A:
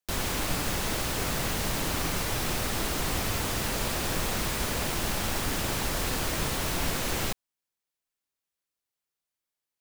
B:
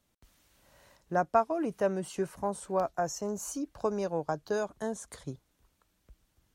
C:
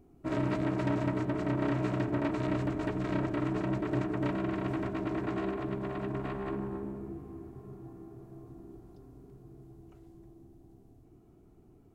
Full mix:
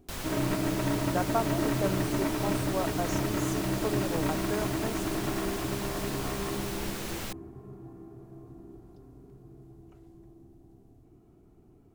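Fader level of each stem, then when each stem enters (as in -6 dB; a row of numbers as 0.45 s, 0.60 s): -7.5 dB, -3.5 dB, +1.0 dB; 0.00 s, 0.00 s, 0.00 s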